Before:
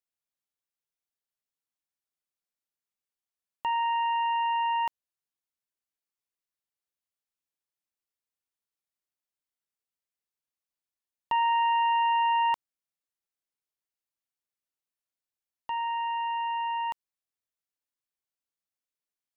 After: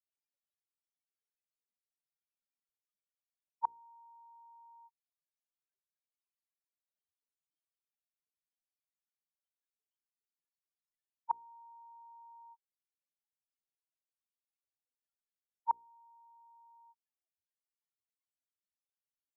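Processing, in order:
spectral peaks only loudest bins 1
gate with flip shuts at −32 dBFS, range −39 dB
mains-hum notches 60/120/180/240/300/360/420/480 Hz
level +12 dB

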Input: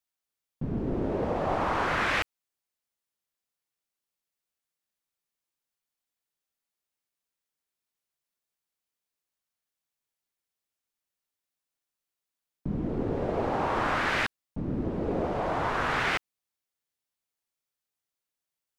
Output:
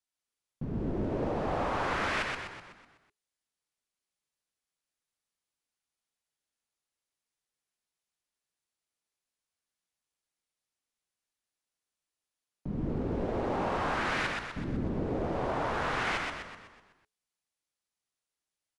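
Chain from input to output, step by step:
pitch vibrato 2.8 Hz 14 cents
in parallel at −1 dB: brickwall limiter −25 dBFS, peak gain reduction 9.5 dB
on the sum: hard clipping −19 dBFS, distortion −20 dB
elliptic low-pass filter 11,000 Hz, stop band 40 dB
echo with shifted repeats 125 ms, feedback 52%, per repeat −62 Hz, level −3 dB
level −7.5 dB

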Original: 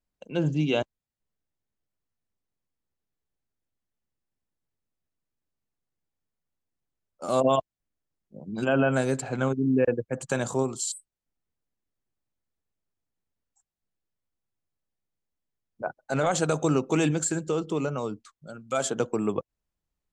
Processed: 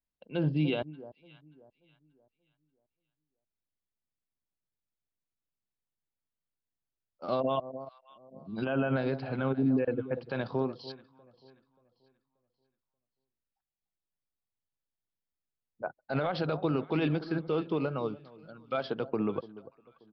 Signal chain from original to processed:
delay that swaps between a low-pass and a high-pass 291 ms, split 970 Hz, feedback 55%, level −13.5 dB
downsampling to 11,025 Hz
brickwall limiter −19 dBFS, peak gain reduction 7.5 dB
expander for the loud parts 1.5 to 1, over −41 dBFS

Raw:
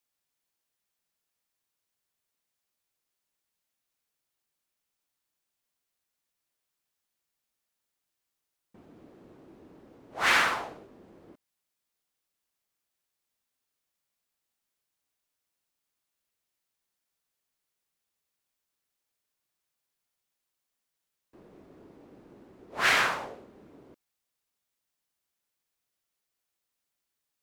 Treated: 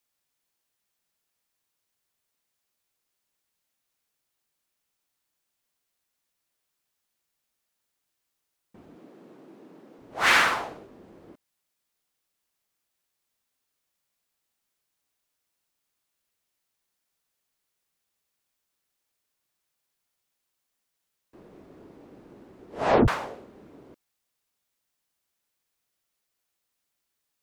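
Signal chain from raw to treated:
0:08.95–0:09.99: high-pass filter 160 Hz 24 dB per octave
0:22.68: tape stop 0.40 s
level +3.5 dB

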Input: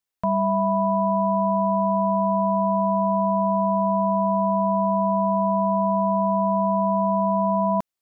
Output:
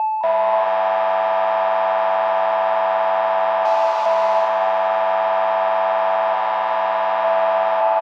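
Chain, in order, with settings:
0:06.33–0:07.24: comb filter 4.1 ms, depth 41%
brickwall limiter −20.5 dBFS, peak gain reduction 8.5 dB
0:03.65–0:04.06: wrap-around overflow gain 32.5 dB
steady tone 870 Hz −29 dBFS
soft clipping −31 dBFS, distortion −8 dB
high-pass with resonance 670 Hz, resonance Q 4.9
high-frequency loss of the air 200 metres
echo with shifted repeats 208 ms, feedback 60%, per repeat +97 Hz, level −11.5 dB
reverb whose tail is shaped and stops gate 450 ms rising, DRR 1 dB
level +9 dB

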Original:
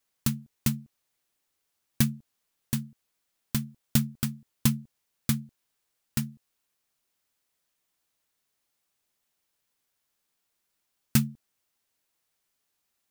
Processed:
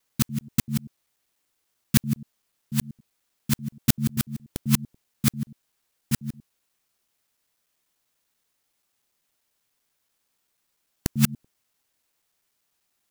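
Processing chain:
reversed piece by piece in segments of 97 ms
level +4 dB

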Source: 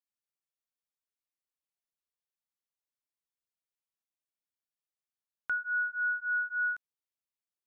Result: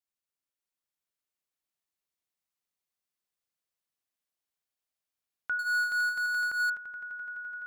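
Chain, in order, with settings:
echo that builds up and dies away 85 ms, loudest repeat 8, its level −10.5 dB
0:05.59–0:06.70: power curve on the samples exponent 0.5

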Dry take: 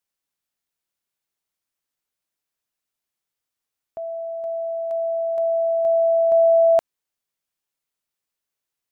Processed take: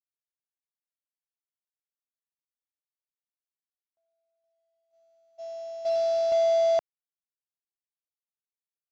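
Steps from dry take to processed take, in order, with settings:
variable-slope delta modulation 32 kbit/s
noise gate −20 dBFS, range −43 dB
level −7 dB

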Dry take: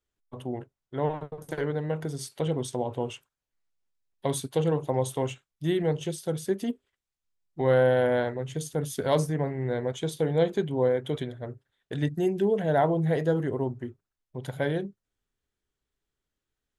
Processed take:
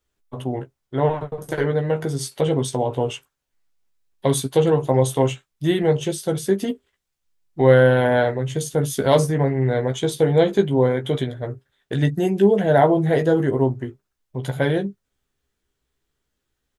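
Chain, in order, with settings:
double-tracking delay 15 ms −6 dB
level +7.5 dB

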